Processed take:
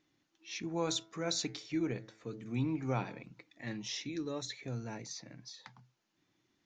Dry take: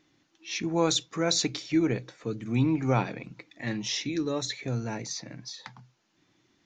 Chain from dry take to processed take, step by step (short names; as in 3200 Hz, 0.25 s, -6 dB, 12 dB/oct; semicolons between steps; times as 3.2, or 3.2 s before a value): 0.78–3.21 de-hum 109.5 Hz, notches 20; gain -9 dB